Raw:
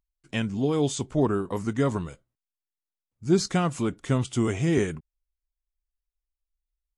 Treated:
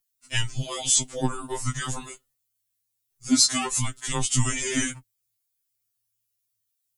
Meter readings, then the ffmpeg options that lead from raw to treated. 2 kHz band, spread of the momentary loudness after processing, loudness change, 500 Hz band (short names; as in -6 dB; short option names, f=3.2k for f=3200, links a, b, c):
+4.0 dB, 13 LU, +1.5 dB, -9.5 dB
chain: -af "afreqshift=-110,crystalizer=i=7:c=0,afftfilt=real='re*2.45*eq(mod(b,6),0)':imag='im*2.45*eq(mod(b,6),0)':win_size=2048:overlap=0.75"